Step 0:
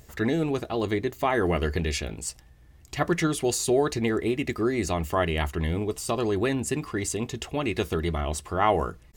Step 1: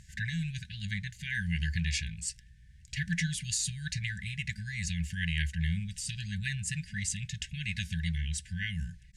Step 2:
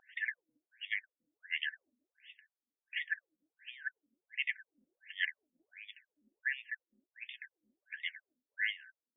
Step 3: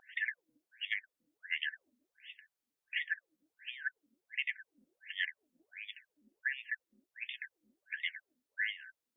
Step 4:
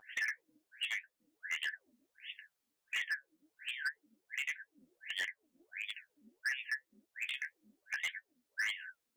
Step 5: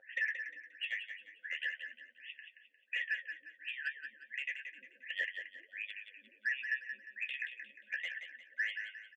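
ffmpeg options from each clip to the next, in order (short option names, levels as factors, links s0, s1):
-af "lowpass=f=9500:w=0.5412,lowpass=f=9500:w=1.3066,afftfilt=real='re*(1-between(b*sr/4096,210,1500))':imag='im*(1-between(b*sr/4096,210,1500))':win_size=4096:overlap=0.75,volume=0.794"
-af "afftfilt=real='re*between(b*sr/1024,350*pow(2600/350,0.5+0.5*sin(2*PI*1.4*pts/sr))/1.41,350*pow(2600/350,0.5+0.5*sin(2*PI*1.4*pts/sr))*1.41)':imag='im*between(b*sr/1024,350*pow(2600/350,0.5+0.5*sin(2*PI*1.4*pts/sr))/1.41,350*pow(2600/350,0.5+0.5*sin(2*PI*1.4*pts/sr))*1.41)':win_size=1024:overlap=0.75,volume=1.5"
-af "acompressor=threshold=0.0158:ratio=6,volume=1.68"
-af "flanger=delay=9.2:depth=5.4:regen=39:speed=1.7:shape=sinusoidal,alimiter=level_in=2:limit=0.0631:level=0:latency=1:release=412,volume=0.501,asoftclip=type=hard:threshold=0.0106,volume=2.66"
-filter_complex "[0:a]asplit=3[s0][s1][s2];[s0]bandpass=f=530:t=q:w=8,volume=1[s3];[s1]bandpass=f=1840:t=q:w=8,volume=0.501[s4];[s2]bandpass=f=2480:t=q:w=8,volume=0.355[s5];[s3][s4][s5]amix=inputs=3:normalize=0,lowshelf=f=190:g=10,aecho=1:1:177|354|531|708:0.398|0.143|0.0516|0.0186,volume=3.16"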